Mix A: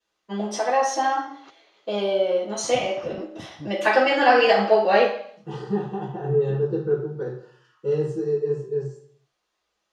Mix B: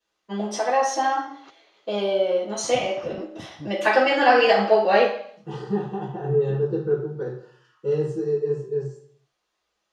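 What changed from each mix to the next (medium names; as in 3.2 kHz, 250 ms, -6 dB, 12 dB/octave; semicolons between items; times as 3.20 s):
no change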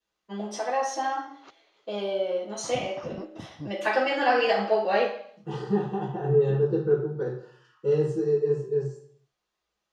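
first voice -6.0 dB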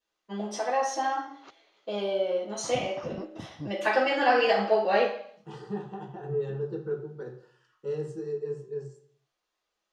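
second voice: send -10.5 dB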